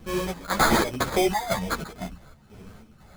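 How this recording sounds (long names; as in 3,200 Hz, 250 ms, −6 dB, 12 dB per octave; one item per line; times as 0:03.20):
phaser sweep stages 12, 1.2 Hz, lowest notch 320–3,800 Hz
aliases and images of a low sample rate 2,800 Hz, jitter 0%
chopped level 2 Hz, depth 60%, duty 65%
a shimmering, thickened sound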